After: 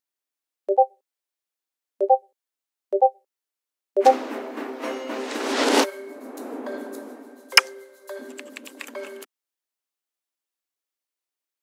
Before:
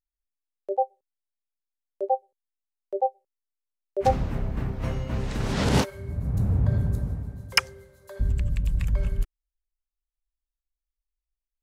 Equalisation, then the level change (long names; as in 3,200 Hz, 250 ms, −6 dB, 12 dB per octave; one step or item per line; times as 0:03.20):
linear-phase brick-wall high-pass 240 Hz
+7.0 dB